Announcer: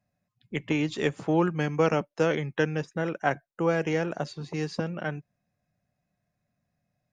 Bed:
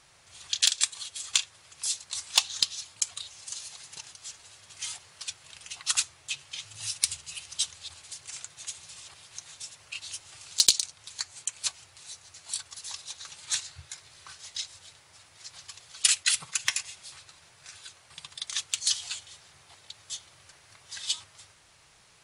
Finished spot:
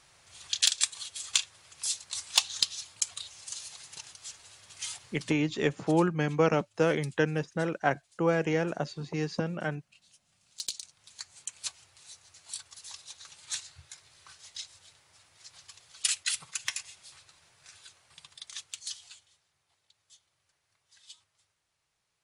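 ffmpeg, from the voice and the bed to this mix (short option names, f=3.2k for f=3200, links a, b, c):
-filter_complex "[0:a]adelay=4600,volume=-1dB[a];[1:a]volume=15dB,afade=t=out:st=5.11:d=0.27:silence=0.0891251,afade=t=in:st=10.42:d=1.13:silence=0.149624,afade=t=out:st=17.88:d=1.58:silence=0.177828[b];[a][b]amix=inputs=2:normalize=0"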